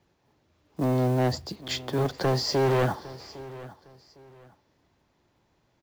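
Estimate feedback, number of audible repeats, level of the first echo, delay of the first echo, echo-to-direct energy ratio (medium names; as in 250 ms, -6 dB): 27%, 2, -18.0 dB, 807 ms, -17.5 dB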